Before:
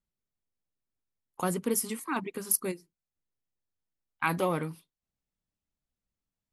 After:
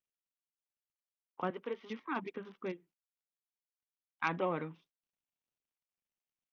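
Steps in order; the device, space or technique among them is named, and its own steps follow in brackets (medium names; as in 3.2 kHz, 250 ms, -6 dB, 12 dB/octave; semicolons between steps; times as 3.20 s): 1.50–1.90 s: high-pass 430 Hz 12 dB/octave; Bluetooth headset (high-pass 180 Hz 12 dB/octave; resampled via 8 kHz; trim -5 dB; SBC 64 kbps 48 kHz)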